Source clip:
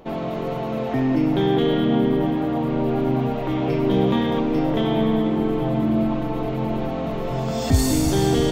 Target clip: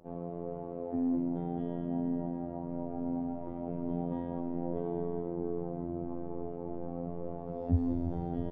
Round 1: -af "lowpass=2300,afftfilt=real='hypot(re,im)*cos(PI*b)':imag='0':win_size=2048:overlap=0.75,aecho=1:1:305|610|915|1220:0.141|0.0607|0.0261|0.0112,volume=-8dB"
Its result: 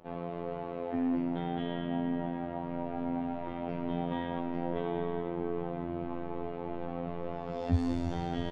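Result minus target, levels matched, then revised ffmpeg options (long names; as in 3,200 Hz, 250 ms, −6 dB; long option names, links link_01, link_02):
2,000 Hz band +16.5 dB
-af "lowpass=610,afftfilt=real='hypot(re,im)*cos(PI*b)':imag='0':win_size=2048:overlap=0.75,aecho=1:1:305|610|915|1220:0.141|0.0607|0.0261|0.0112,volume=-8dB"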